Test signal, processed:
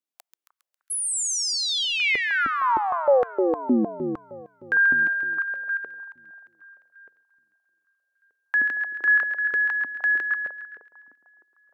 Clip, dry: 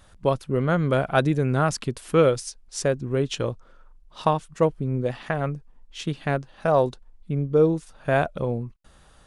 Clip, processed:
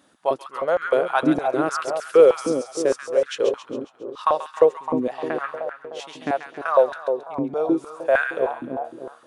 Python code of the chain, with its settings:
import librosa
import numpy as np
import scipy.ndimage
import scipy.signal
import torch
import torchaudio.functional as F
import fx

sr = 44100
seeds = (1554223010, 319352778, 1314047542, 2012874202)

y = fx.echo_split(x, sr, split_hz=1100.0, low_ms=305, high_ms=136, feedback_pct=52, wet_db=-6)
y = fx.filter_held_highpass(y, sr, hz=6.5, low_hz=270.0, high_hz=1500.0)
y = y * librosa.db_to_amplitude(-3.5)